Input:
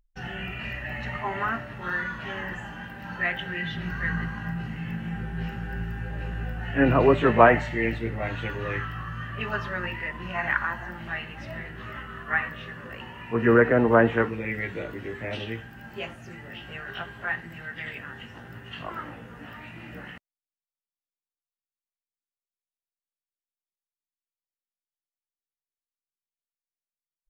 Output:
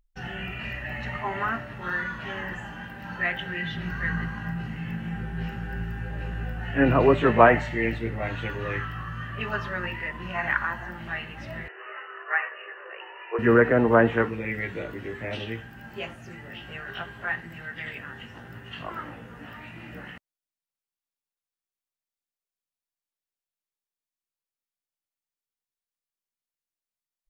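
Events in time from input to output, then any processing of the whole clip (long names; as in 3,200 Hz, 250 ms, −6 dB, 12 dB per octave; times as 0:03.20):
0:11.68–0:13.39: linear-phase brick-wall band-pass 340–3,000 Hz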